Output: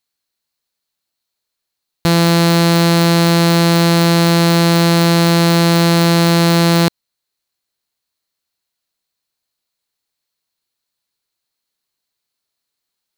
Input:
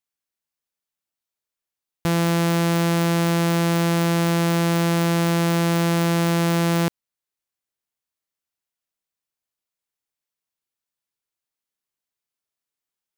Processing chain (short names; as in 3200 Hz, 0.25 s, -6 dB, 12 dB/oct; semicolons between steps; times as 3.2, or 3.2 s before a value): bell 4200 Hz +11.5 dB 0.25 oct; gain +8 dB